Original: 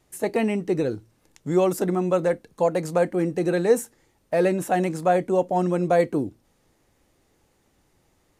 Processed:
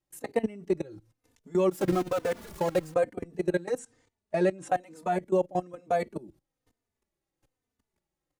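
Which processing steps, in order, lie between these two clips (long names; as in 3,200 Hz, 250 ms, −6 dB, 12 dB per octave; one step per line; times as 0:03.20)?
0:01.71–0:02.94: converter with a step at zero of −24.5 dBFS
0:03.78–0:04.69: Butterworth low-pass 9,400 Hz 48 dB per octave
output level in coarse steps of 21 dB
barber-pole flanger 3.2 ms −1.1 Hz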